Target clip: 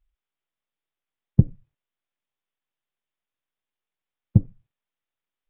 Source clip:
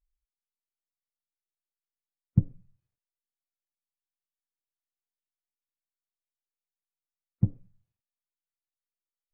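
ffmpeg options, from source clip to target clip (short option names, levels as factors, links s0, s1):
-af "acontrast=77,aresample=8000,aresample=44100,atempo=1.7,volume=1.33"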